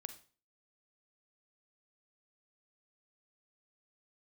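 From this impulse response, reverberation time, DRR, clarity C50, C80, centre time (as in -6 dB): 0.40 s, 9.5 dB, 11.5 dB, 16.5 dB, 7 ms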